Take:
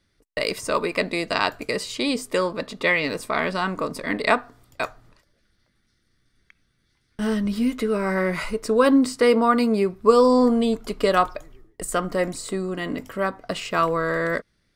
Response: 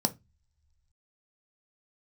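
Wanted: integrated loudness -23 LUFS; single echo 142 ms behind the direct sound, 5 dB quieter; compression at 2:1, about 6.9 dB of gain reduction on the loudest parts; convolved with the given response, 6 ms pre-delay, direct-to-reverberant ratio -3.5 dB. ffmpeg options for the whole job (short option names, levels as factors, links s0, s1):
-filter_complex "[0:a]acompressor=threshold=0.0794:ratio=2,aecho=1:1:142:0.562,asplit=2[s0][s1];[1:a]atrim=start_sample=2205,adelay=6[s2];[s1][s2]afir=irnorm=-1:irlink=0,volume=0.708[s3];[s0][s3]amix=inputs=2:normalize=0,volume=0.376"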